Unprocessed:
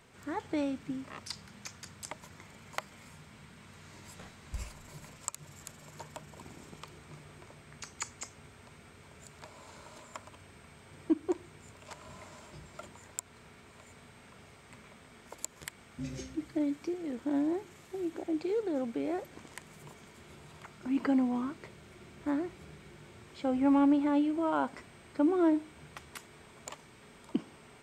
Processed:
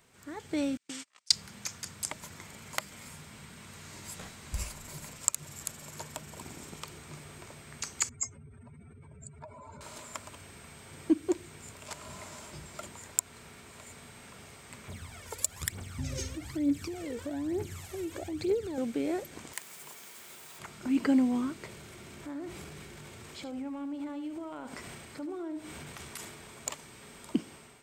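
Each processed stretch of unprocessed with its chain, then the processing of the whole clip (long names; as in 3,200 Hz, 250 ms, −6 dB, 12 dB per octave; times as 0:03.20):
0:00.77–0:01.32: noise gate −42 dBFS, range −37 dB + meter weighting curve ITU-R 468
0:08.09–0:09.81: expanding power law on the bin magnitudes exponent 2.6 + upward compression, threshold −58 dBFS
0:14.88–0:18.78: parametric band 90 Hz +13 dB 0.62 octaves + downward compressor 2.5 to 1, threshold −36 dBFS + phase shifter 1.1 Hz, delay 2.3 ms, feedback 65%
0:19.53–0:20.59: high-pass filter 800 Hz 6 dB per octave + bit-depth reduction 10 bits, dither none
0:21.66–0:26.56: transient designer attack −3 dB, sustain +7 dB + downward compressor 3 to 1, threshold −45 dBFS + single-tap delay 74 ms −11.5 dB
whole clip: dynamic equaliser 910 Hz, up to −6 dB, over −47 dBFS, Q 1.1; automatic gain control gain up to 9 dB; high-shelf EQ 5,700 Hz +10.5 dB; level −5.5 dB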